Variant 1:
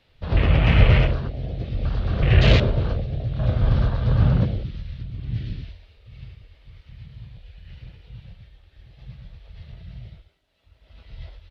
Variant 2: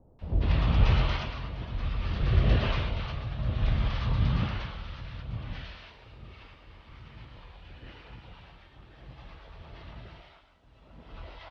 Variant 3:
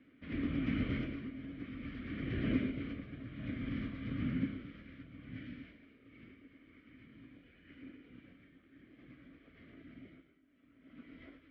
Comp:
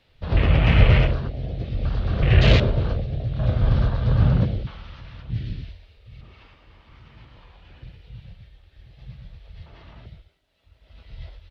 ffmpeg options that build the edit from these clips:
-filter_complex "[1:a]asplit=3[s0][s1][s2];[0:a]asplit=4[s3][s4][s5][s6];[s3]atrim=end=4.672[s7];[s0]atrim=start=4.668:end=5.302[s8];[s4]atrim=start=5.298:end=6.212[s9];[s1]atrim=start=6.208:end=7.832[s10];[s5]atrim=start=7.828:end=9.662[s11];[s2]atrim=start=9.658:end=10.062[s12];[s6]atrim=start=10.058[s13];[s7][s8]acrossfade=d=0.004:c1=hsin:c2=hsin[s14];[s14][s9]acrossfade=d=0.004:c1=hsin:c2=hsin[s15];[s15][s10]acrossfade=d=0.004:c1=hsin:c2=hsin[s16];[s16][s11]acrossfade=d=0.004:c1=hsin:c2=hsin[s17];[s17][s12]acrossfade=d=0.004:c1=hsin:c2=hsin[s18];[s18][s13]acrossfade=d=0.004:c1=hsin:c2=hsin"

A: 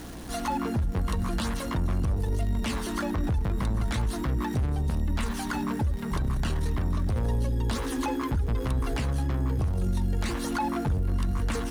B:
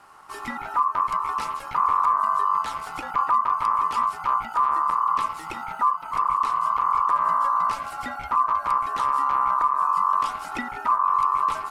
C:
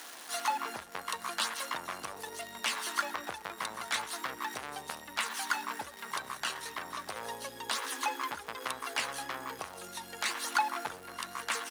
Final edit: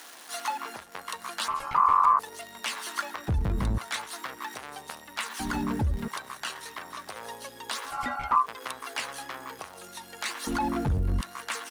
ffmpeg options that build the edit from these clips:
-filter_complex "[1:a]asplit=2[s0][s1];[0:a]asplit=3[s2][s3][s4];[2:a]asplit=6[s5][s6][s7][s8][s9][s10];[s5]atrim=end=1.482[s11];[s0]atrim=start=1.478:end=2.192[s12];[s6]atrim=start=2.188:end=3.282[s13];[s2]atrim=start=3.278:end=3.782[s14];[s7]atrim=start=3.778:end=5.402[s15];[s3]atrim=start=5.398:end=6.082[s16];[s8]atrim=start=6.078:end=7.94[s17];[s1]atrim=start=7.84:end=8.47[s18];[s9]atrim=start=8.37:end=10.472[s19];[s4]atrim=start=10.468:end=11.212[s20];[s10]atrim=start=11.208[s21];[s11][s12]acrossfade=d=0.004:c1=hsin:c2=hsin[s22];[s22][s13]acrossfade=d=0.004:c1=hsin:c2=hsin[s23];[s23][s14]acrossfade=d=0.004:c1=hsin:c2=hsin[s24];[s24][s15]acrossfade=d=0.004:c1=hsin:c2=hsin[s25];[s25][s16]acrossfade=d=0.004:c1=hsin:c2=hsin[s26];[s26][s17]acrossfade=d=0.004:c1=hsin:c2=hsin[s27];[s27][s18]acrossfade=d=0.1:c1=tri:c2=tri[s28];[s28][s19]acrossfade=d=0.1:c1=tri:c2=tri[s29];[s29][s20]acrossfade=d=0.004:c1=hsin:c2=hsin[s30];[s30][s21]acrossfade=d=0.004:c1=hsin:c2=hsin"

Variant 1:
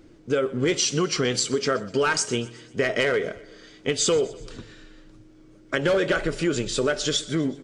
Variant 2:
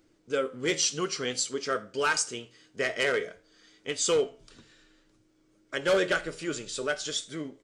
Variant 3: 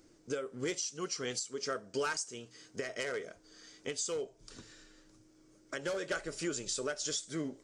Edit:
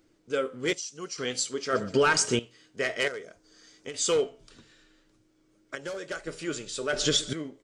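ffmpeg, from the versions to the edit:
-filter_complex "[2:a]asplit=3[s0][s1][s2];[0:a]asplit=2[s3][s4];[1:a]asplit=6[s5][s6][s7][s8][s9][s10];[s5]atrim=end=0.732[s11];[s0]atrim=start=0.728:end=1.182[s12];[s6]atrim=start=1.178:end=1.732[s13];[s3]atrim=start=1.728:end=2.392[s14];[s7]atrim=start=2.388:end=3.082[s15];[s1]atrim=start=3.078:end=3.942[s16];[s8]atrim=start=3.938:end=5.752[s17];[s2]atrim=start=5.748:end=6.272[s18];[s9]atrim=start=6.268:end=6.932[s19];[s4]atrim=start=6.928:end=7.332[s20];[s10]atrim=start=7.328[s21];[s11][s12]acrossfade=d=0.004:c1=hsin:c2=hsin[s22];[s22][s13]acrossfade=d=0.004:c1=hsin:c2=hsin[s23];[s23][s14]acrossfade=d=0.004:c1=hsin:c2=hsin[s24];[s24][s15]acrossfade=d=0.004:c1=hsin:c2=hsin[s25];[s25][s16]acrossfade=d=0.004:c1=hsin:c2=hsin[s26];[s26][s17]acrossfade=d=0.004:c1=hsin:c2=hsin[s27];[s27][s18]acrossfade=d=0.004:c1=hsin:c2=hsin[s28];[s28][s19]acrossfade=d=0.004:c1=hsin:c2=hsin[s29];[s29][s20]acrossfade=d=0.004:c1=hsin:c2=hsin[s30];[s30][s21]acrossfade=d=0.004:c1=hsin:c2=hsin"

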